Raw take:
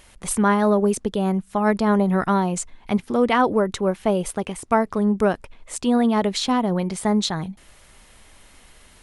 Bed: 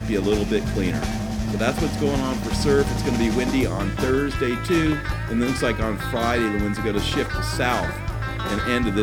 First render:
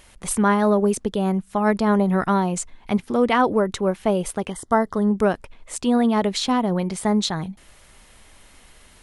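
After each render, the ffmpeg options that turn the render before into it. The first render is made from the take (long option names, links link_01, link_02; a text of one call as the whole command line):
ffmpeg -i in.wav -filter_complex "[0:a]asettb=1/sr,asplit=3[link_01][link_02][link_03];[link_01]atrim=end=4.504[link_04];[link_02]atrim=start=4.5:end=5.11,asetpts=PTS-STARTPTS,afade=type=in:duration=0.004:curve=qsin,afade=type=out:start_time=0.606:duration=0.004:curve=qsin,asuperstop=centerf=2500:order=20:qfactor=3.1[link_05];[link_03]atrim=start=5.106[link_06];[link_04][link_05]acrossfade=duration=0.004:curve1=hsin:curve2=qsin[link_07];[link_07][link_06]acrossfade=duration=0.004:curve1=qsin:curve2=hsin" out.wav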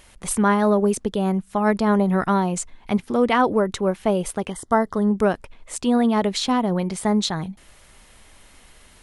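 ffmpeg -i in.wav -af anull out.wav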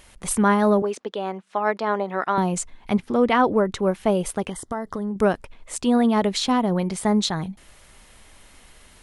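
ffmpeg -i in.wav -filter_complex "[0:a]asettb=1/sr,asplit=3[link_01][link_02][link_03];[link_01]atrim=end=0.824[link_04];[link_02]atrim=start=0.82:end=2.38,asetpts=PTS-STARTPTS,afade=type=in:duration=0.004:curve=qsin,afade=type=out:start_time=1.556:duration=0.004:curve=qsin,highpass=450,lowpass=4400[link_05];[link_03]atrim=start=2.376[link_06];[link_04][link_05]acrossfade=duration=0.004:curve1=hsin:curve2=qsin[link_07];[link_07][link_06]acrossfade=duration=0.004:curve1=qsin:curve2=hsin,asettb=1/sr,asplit=3[link_08][link_09][link_10];[link_08]atrim=end=2.944[link_11];[link_09]atrim=start=2.94:end=3.79,asetpts=PTS-STARTPTS,afade=type=in:duration=0.004:curve=qsin,afade=type=out:start_time=0.846:duration=0.004:curve=qsin,highshelf=frequency=7300:gain=-9.5[link_12];[link_10]atrim=start=3.786[link_13];[link_11][link_12]acrossfade=duration=0.004:curve1=hsin:curve2=qsin[link_14];[link_14][link_13]acrossfade=duration=0.004:curve1=qsin:curve2=hsin,asettb=1/sr,asplit=3[link_15][link_16][link_17];[link_15]atrim=end=4.494[link_18];[link_16]atrim=start=4.49:end=5.16,asetpts=PTS-STARTPTS,afade=type=in:duration=0.004:curve=qsin,afade=type=out:start_time=0.666:duration=0.004:curve=qsin,acompressor=threshold=-24dB:ratio=6:attack=3.2:release=140:knee=1:detection=peak[link_19];[link_17]atrim=start=5.156[link_20];[link_18][link_19]acrossfade=duration=0.004:curve1=hsin:curve2=qsin[link_21];[link_21][link_20]acrossfade=duration=0.004:curve1=qsin:curve2=hsin" out.wav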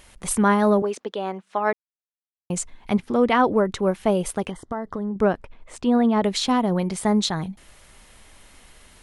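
ffmpeg -i in.wav -filter_complex "[0:a]asettb=1/sr,asplit=3[link_01][link_02][link_03];[link_01]atrim=end=4.514[link_04];[link_02]atrim=start=4.51:end=6.24,asetpts=PTS-STARTPTS,afade=type=in:duration=0.004:curve=qsin,afade=type=out:start_time=1.726:duration=0.004:curve=qsin,aemphasis=mode=reproduction:type=75kf[link_05];[link_03]atrim=start=6.236[link_06];[link_04][link_05]acrossfade=duration=0.004:curve1=hsin:curve2=qsin[link_07];[link_07][link_06]acrossfade=duration=0.004:curve1=qsin:curve2=hsin,asplit=3[link_08][link_09][link_10];[link_08]atrim=end=1.73,asetpts=PTS-STARTPTS,afade=type=out:start_time=1.726:duration=0.004:curve=hsin[link_11];[link_09]atrim=start=1.73:end=2.5,asetpts=PTS-STARTPTS,volume=0[link_12];[link_10]atrim=start=2.5,asetpts=PTS-STARTPTS,afade=type=in:duration=0.004:curve=hsin[link_13];[link_11][link_12][link_13]concat=n=3:v=0:a=1" out.wav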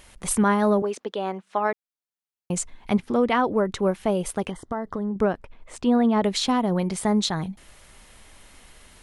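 ffmpeg -i in.wav -af "alimiter=limit=-11dB:level=0:latency=1:release=473" out.wav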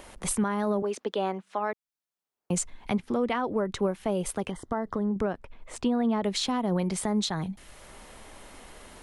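ffmpeg -i in.wav -filter_complex "[0:a]acrossover=split=220|1200|1900[link_01][link_02][link_03][link_04];[link_02]acompressor=mode=upward:threshold=-43dB:ratio=2.5[link_05];[link_01][link_05][link_03][link_04]amix=inputs=4:normalize=0,alimiter=limit=-18dB:level=0:latency=1:release=285" out.wav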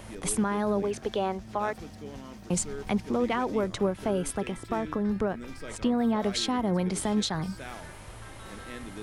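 ffmpeg -i in.wav -i bed.wav -filter_complex "[1:a]volume=-20dB[link_01];[0:a][link_01]amix=inputs=2:normalize=0" out.wav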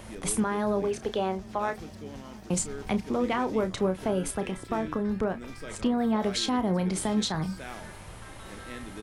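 ffmpeg -i in.wav -filter_complex "[0:a]asplit=2[link_01][link_02];[link_02]adelay=32,volume=-11dB[link_03];[link_01][link_03]amix=inputs=2:normalize=0,asplit=2[link_04][link_05];[link_05]adelay=699.7,volume=-27dB,highshelf=frequency=4000:gain=-15.7[link_06];[link_04][link_06]amix=inputs=2:normalize=0" out.wav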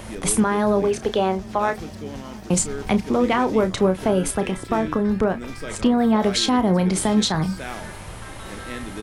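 ffmpeg -i in.wav -af "volume=8dB" out.wav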